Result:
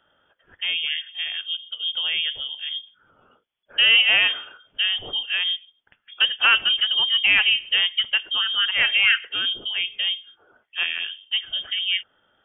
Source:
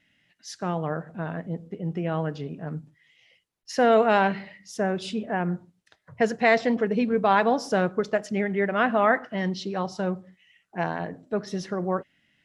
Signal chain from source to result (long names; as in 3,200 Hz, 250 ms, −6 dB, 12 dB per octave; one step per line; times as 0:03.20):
voice inversion scrambler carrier 3,400 Hz
level +2.5 dB